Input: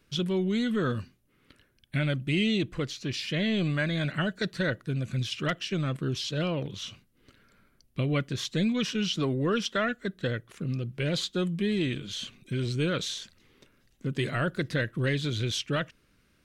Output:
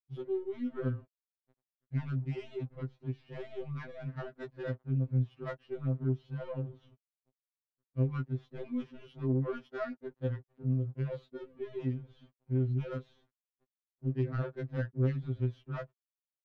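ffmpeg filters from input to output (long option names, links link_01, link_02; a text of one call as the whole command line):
ffmpeg -i in.wav -af "aeval=exprs='val(0)*gte(abs(val(0)),0.00668)':channel_layout=same,adynamicsmooth=sensitivity=0.5:basefreq=640,afftfilt=real='re*2.45*eq(mod(b,6),0)':imag='im*2.45*eq(mod(b,6),0)':win_size=2048:overlap=0.75,volume=-4dB" out.wav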